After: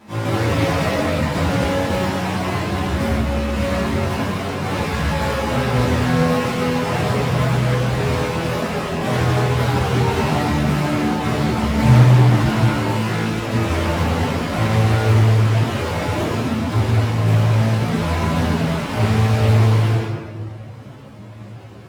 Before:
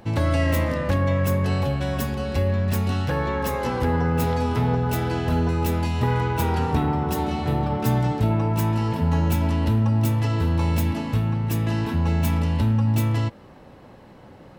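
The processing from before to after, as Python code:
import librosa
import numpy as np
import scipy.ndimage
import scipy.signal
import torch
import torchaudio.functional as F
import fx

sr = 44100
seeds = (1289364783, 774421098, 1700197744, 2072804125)

y = fx.halfwave_hold(x, sr)
y = scipy.signal.sosfilt(scipy.signal.butter(2, 75.0, 'highpass', fs=sr, output='sos'), y)
y = fx.low_shelf(y, sr, hz=180.0, db=-3.0)
y = fx.echo_tape(y, sr, ms=96, feedback_pct=74, wet_db=-24, lp_hz=2300.0, drive_db=4.0, wow_cents=39)
y = fx.room_shoebox(y, sr, seeds[0], volume_m3=540.0, walls='mixed', distance_m=8.7)
y = fx.stretch_vocoder_free(y, sr, factor=1.5)
y = fx.high_shelf(y, sr, hz=12000.0, db=-9.0)
y = fx.doppler_dist(y, sr, depth_ms=0.25)
y = y * 10.0 ** (-12.0 / 20.0)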